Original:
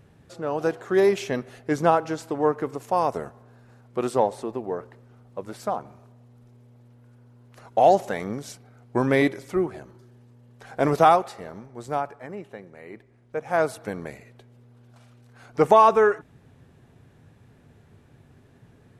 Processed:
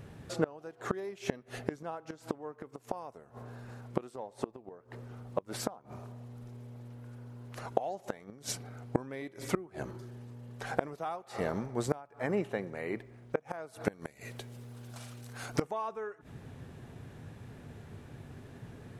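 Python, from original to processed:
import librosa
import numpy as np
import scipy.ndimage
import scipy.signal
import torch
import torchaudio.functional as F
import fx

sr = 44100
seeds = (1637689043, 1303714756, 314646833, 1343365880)

y = fx.high_shelf(x, sr, hz=fx.line((13.92, 3000.0), (15.61, 4800.0)), db=11.5, at=(13.92, 15.61), fade=0.02)
y = fx.gate_flip(y, sr, shuts_db=-21.0, range_db=-27)
y = y * librosa.db_to_amplitude(5.5)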